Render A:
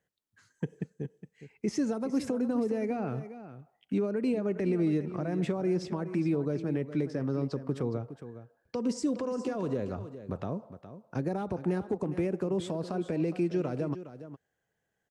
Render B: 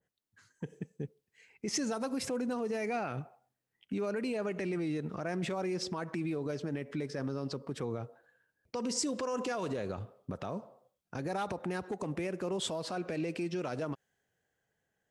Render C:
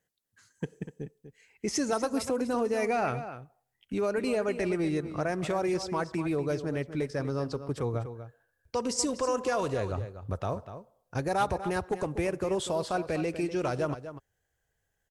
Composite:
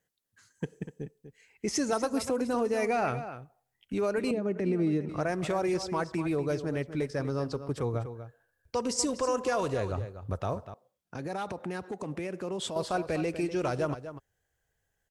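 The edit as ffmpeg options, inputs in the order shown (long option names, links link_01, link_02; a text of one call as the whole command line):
ffmpeg -i take0.wav -i take1.wav -i take2.wav -filter_complex "[2:a]asplit=3[link_01][link_02][link_03];[link_01]atrim=end=4.312[link_04];[0:a]atrim=start=4.308:end=5.092[link_05];[link_02]atrim=start=5.088:end=10.742[link_06];[1:a]atrim=start=10.738:end=12.762[link_07];[link_03]atrim=start=12.758[link_08];[link_04][link_05]acrossfade=duration=0.004:curve1=hsin:curve2=hsin[link_09];[link_09][link_06]acrossfade=duration=0.004:curve1=hsin:curve2=hsin[link_10];[link_10][link_07]acrossfade=duration=0.004:curve1=hsin:curve2=hsin[link_11];[link_11][link_08]acrossfade=duration=0.004:curve1=hsin:curve2=hsin" out.wav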